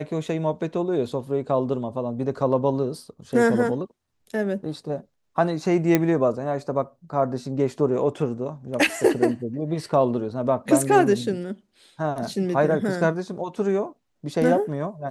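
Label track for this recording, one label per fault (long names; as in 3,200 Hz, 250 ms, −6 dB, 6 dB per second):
5.950000	5.950000	click −5 dBFS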